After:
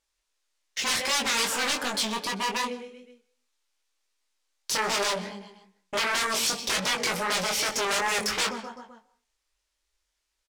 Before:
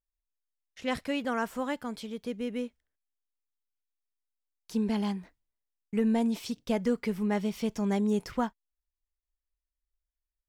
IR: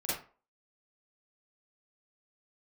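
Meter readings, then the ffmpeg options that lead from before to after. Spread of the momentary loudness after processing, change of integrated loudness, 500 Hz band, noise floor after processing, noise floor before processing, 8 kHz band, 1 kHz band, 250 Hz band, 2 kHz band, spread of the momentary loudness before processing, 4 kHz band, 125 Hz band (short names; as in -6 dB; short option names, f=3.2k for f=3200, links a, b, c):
13 LU, +5.5 dB, +0.5 dB, -80 dBFS, under -85 dBFS, +22.0 dB, +8.5 dB, -9.5 dB, +13.5 dB, 10 LU, +18.0 dB, -5.5 dB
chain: -filter_complex "[0:a]aecho=1:1:128|256|384|512:0.1|0.055|0.0303|0.0166,aeval=exprs='0.126*sin(PI/2*7.94*val(0)/0.126)':c=same,bass=f=250:g=-15,treble=f=4k:g=12,bandreject=f=147.9:t=h:w=4,bandreject=f=295.8:t=h:w=4,bandreject=f=443.7:t=h:w=4,bandreject=f=591.6:t=h:w=4,bandreject=f=739.5:t=h:w=4,bandreject=f=887.4:t=h:w=4,bandreject=f=1.0353k:t=h:w=4,bandreject=f=1.1832k:t=h:w=4,bandreject=f=1.3311k:t=h:w=4,bandreject=f=1.479k:t=h:w=4,bandreject=f=1.6269k:t=h:w=4,bandreject=f=1.7748k:t=h:w=4,bandreject=f=1.9227k:t=h:w=4,bandreject=f=2.0706k:t=h:w=4,bandreject=f=2.2185k:t=h:w=4,bandreject=f=2.3664k:t=h:w=4,bandreject=f=2.5143k:t=h:w=4,asplit=2[a][b];[1:a]atrim=start_sample=2205,adelay=108[c];[b][c]afir=irnorm=-1:irlink=0,volume=-25dB[d];[a][d]amix=inputs=2:normalize=0,asoftclip=type=tanh:threshold=-14dB,flanger=delay=20:depth=2.9:speed=2.6,adynamicsmooth=sensitivity=5:basefreq=5k,equalizer=f=2.4k:t=o:w=0.77:g=2,bandreject=f=700:w=12,volume=-1.5dB"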